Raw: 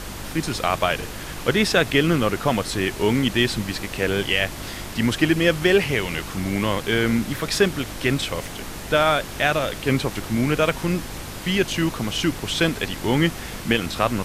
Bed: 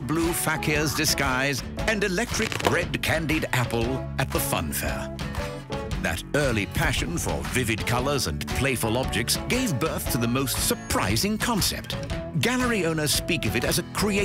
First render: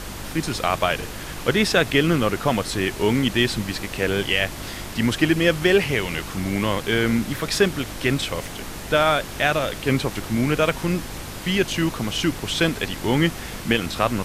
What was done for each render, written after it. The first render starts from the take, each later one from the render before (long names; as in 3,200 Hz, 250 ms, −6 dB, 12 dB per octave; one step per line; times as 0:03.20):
no processing that can be heard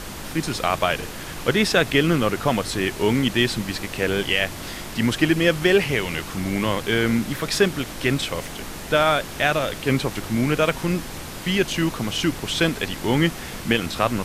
hum removal 50 Hz, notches 2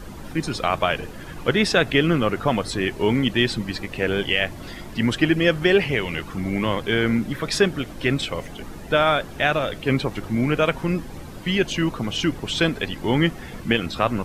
broadband denoise 12 dB, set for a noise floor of −34 dBFS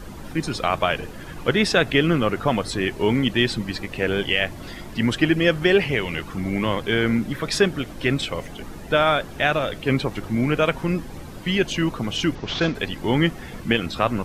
0:12.35–0:12.75: variable-slope delta modulation 32 kbit/s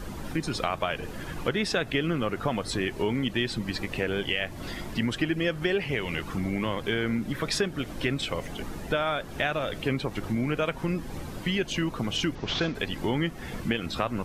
downward compressor 3 to 1, threshold −26 dBFS, peak gain reduction 10.5 dB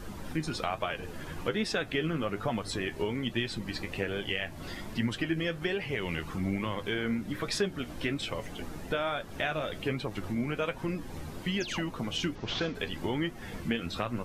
0:11.60–0:11.82: sound drawn into the spectrogram fall 510–7,200 Hz −37 dBFS
flanger 1.2 Hz, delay 8.2 ms, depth 5 ms, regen +53%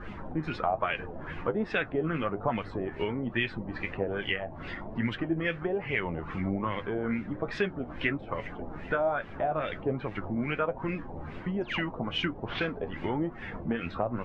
auto-filter low-pass sine 2.4 Hz 680–2,500 Hz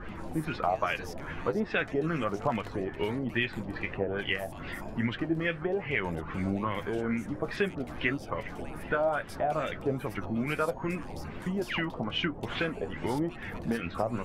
mix in bed −26 dB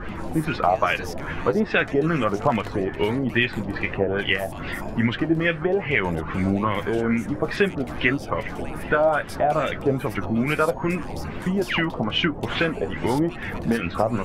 level +8.5 dB